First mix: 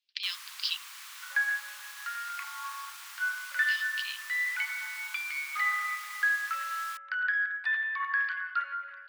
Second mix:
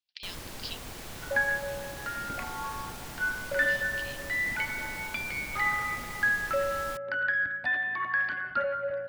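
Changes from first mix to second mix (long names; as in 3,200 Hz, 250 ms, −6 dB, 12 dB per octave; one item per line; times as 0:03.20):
speech −8.0 dB
master: remove elliptic high-pass filter 1,100 Hz, stop band 80 dB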